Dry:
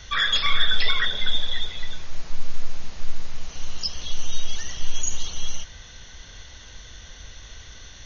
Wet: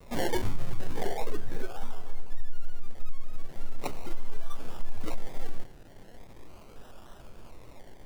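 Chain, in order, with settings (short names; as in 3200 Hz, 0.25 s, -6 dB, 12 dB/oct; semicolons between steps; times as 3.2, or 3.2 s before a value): bell 1900 Hz -3 dB; resonator bank A2 major, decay 0.26 s; compressor 4:1, threshold -26 dBFS, peak gain reduction 9 dB; decimation with a swept rate 29×, swing 60% 0.39 Hz; 0.97–2.27 small resonant body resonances 440/750/1600 Hz, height 9 dB; shaped vibrato square 3.4 Hz, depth 100 cents; gain +6.5 dB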